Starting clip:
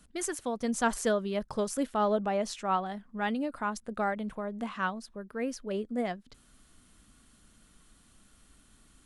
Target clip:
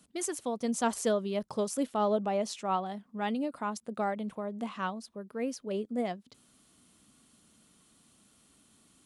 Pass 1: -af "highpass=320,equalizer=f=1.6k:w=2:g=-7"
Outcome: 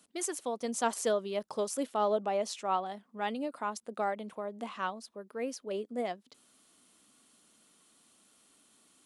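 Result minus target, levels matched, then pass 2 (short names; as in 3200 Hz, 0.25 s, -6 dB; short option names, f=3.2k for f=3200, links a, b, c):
125 Hz band -6.5 dB
-af "highpass=130,equalizer=f=1.6k:w=2:g=-7"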